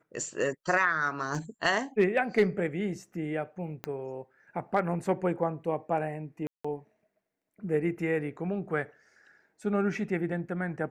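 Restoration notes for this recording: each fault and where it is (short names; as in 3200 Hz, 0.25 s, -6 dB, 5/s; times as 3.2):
1.35 gap 2.3 ms
3.84 pop -20 dBFS
6.47–6.64 gap 0.175 s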